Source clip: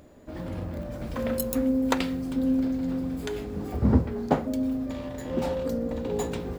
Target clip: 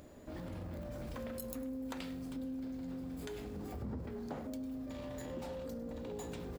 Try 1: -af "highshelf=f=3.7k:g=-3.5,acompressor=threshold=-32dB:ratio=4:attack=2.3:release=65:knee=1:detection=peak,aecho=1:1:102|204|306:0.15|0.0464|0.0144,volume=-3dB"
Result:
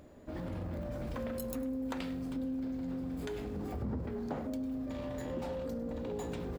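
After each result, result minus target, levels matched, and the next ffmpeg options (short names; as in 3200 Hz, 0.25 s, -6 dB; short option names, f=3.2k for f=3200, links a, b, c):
compressor: peak gain reduction -5 dB; 8000 Hz band -4.5 dB
-af "highshelf=f=3.7k:g=-3.5,acompressor=threshold=-38.5dB:ratio=4:attack=2.3:release=65:knee=1:detection=peak,aecho=1:1:102|204|306:0.15|0.0464|0.0144,volume=-3dB"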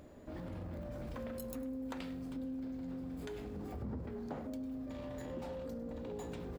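8000 Hz band -4.5 dB
-af "highshelf=f=3.7k:g=4,acompressor=threshold=-38.5dB:ratio=4:attack=2.3:release=65:knee=1:detection=peak,aecho=1:1:102|204|306:0.15|0.0464|0.0144,volume=-3dB"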